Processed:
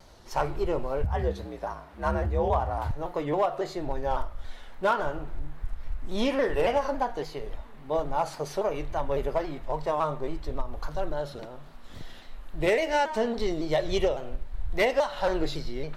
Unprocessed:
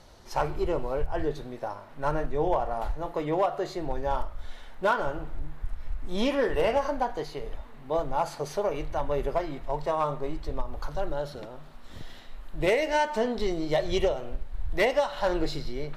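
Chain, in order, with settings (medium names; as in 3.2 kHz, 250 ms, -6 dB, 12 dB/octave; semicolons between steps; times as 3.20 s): 1.04–2.91 s: frequency shift +56 Hz; vibrato with a chosen wave saw down 3.6 Hz, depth 100 cents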